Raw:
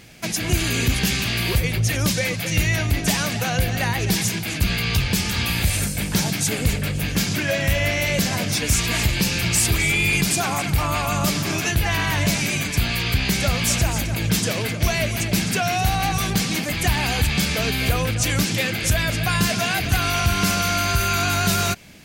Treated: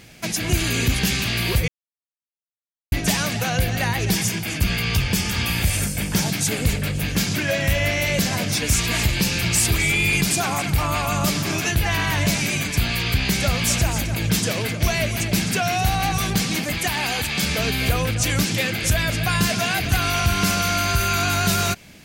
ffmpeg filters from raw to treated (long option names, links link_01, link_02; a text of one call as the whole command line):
ffmpeg -i in.wav -filter_complex "[0:a]asettb=1/sr,asplit=3[link_01][link_02][link_03];[link_01]atrim=end=4.124[link_04];[link_02]atrim=start=4.12:end=6.23,asetpts=PTS-STARTPTS,afade=type=in:duration=0.004:curve=qsin,afade=type=out:start_time=2.106:duration=0.004:curve=qsin,bandreject=frequency=4000:width=10[link_05];[link_03]atrim=start=6.226[link_06];[link_04][link_05]acrossfade=duration=0.004:curve1=hsin:curve2=qsin[link_07];[link_07][link_06]acrossfade=duration=0.004:curve1=qsin:curve2=hsin,asettb=1/sr,asplit=3[link_08][link_09][link_10];[link_08]atrim=end=16.784[link_11];[link_09]atrim=start=16.78:end=17.43,asetpts=PTS-STARTPTS,afade=type=in:duration=0.004:curve=qsin,afade=type=out:start_time=0.646:duration=0.004:curve=qsin,highpass=frequency=290:poles=1[link_12];[link_10]atrim=start=17.426[link_13];[link_11][link_12]acrossfade=duration=0.004:curve1=hsin:curve2=qsin[link_14];[link_14][link_13]acrossfade=duration=0.004:curve1=qsin:curve2=hsin,asplit=3[link_15][link_16][link_17];[link_15]atrim=end=1.68,asetpts=PTS-STARTPTS,afade=type=out:start_time=1.676:duration=0.004:curve=hsin[link_18];[link_16]atrim=start=1.68:end=2.92,asetpts=PTS-STARTPTS,volume=0[link_19];[link_17]atrim=start=2.92,asetpts=PTS-STARTPTS,afade=type=in:duration=0.004:curve=hsin[link_20];[link_18][link_19][link_20]concat=n=3:v=0:a=1" out.wav